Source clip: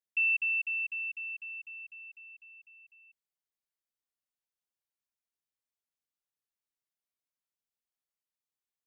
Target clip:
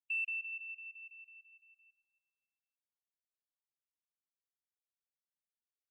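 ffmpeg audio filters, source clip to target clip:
ffmpeg -i in.wav -filter_complex "[0:a]afftfilt=real='re*gte(hypot(re,im),0.02)':imag='im*gte(hypot(re,im),0.02)':win_size=1024:overlap=0.75,equalizer=frequency=2500:width=0.44:gain=-6,asplit=2[link_01][link_02];[link_02]aecho=0:1:423|846|1269:0.15|0.0524|0.0183[link_03];[link_01][link_03]amix=inputs=2:normalize=0,aeval=exprs='0.0355*(cos(1*acos(clip(val(0)/0.0355,-1,1)))-cos(1*PI/2))+0.000282*(cos(3*acos(clip(val(0)/0.0355,-1,1)))-cos(3*PI/2))':channel_layout=same,atempo=1.5,volume=-2dB" out.wav

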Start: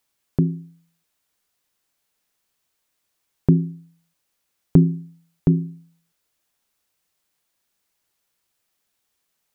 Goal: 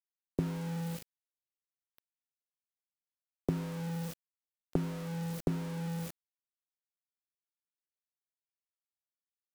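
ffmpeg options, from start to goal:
ffmpeg -i in.wav -filter_complex "[0:a]aeval=exprs='val(0)+0.5*0.0398*sgn(val(0))':channel_layout=same,acrossover=split=160|640[link_01][link_02][link_03];[link_01]acompressor=mode=upward:threshold=-39dB:ratio=2.5[link_04];[link_04][link_02][link_03]amix=inputs=3:normalize=0,afwtdn=0.0398,acompressor=threshold=-28dB:ratio=16,aeval=exprs='val(0)*gte(abs(val(0)),0.0141)':channel_layout=same,volume=-1dB" out.wav

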